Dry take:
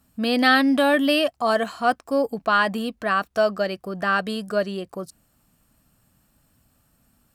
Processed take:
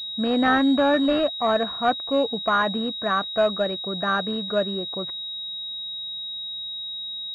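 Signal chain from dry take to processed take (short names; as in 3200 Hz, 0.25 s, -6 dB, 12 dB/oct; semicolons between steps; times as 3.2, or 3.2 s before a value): soft clip -7 dBFS, distortion -26 dB; pulse-width modulation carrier 3800 Hz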